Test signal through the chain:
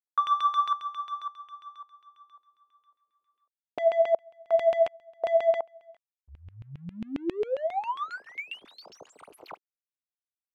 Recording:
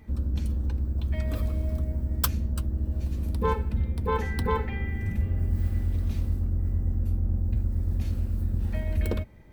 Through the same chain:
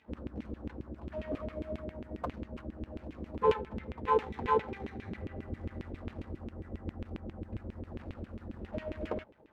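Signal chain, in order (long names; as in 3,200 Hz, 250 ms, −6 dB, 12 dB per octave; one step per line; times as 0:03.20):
running median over 25 samples
auto-filter band-pass saw down 7.4 Hz 310–2,800 Hz
level +8 dB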